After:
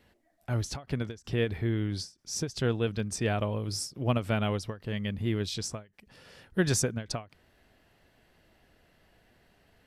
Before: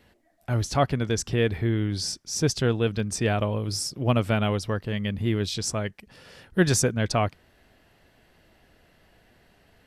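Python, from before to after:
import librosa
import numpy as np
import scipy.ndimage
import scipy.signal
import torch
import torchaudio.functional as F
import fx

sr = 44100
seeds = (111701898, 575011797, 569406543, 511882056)

y = fx.end_taper(x, sr, db_per_s=220.0)
y = y * 10.0 ** (-4.5 / 20.0)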